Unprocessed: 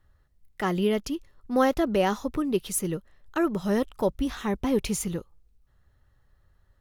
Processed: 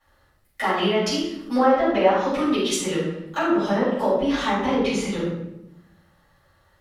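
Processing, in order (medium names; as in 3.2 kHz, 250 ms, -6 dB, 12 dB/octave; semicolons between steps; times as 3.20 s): high-pass 580 Hz 6 dB/octave; low-pass that closes with the level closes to 1.4 kHz, closed at -24 dBFS; 0.68–2.97 s: treble shelf 2 kHz +10 dB; compression 2:1, threshold -37 dBFS, peak gain reduction 10 dB; reverberation RT60 0.90 s, pre-delay 4 ms, DRR -12 dB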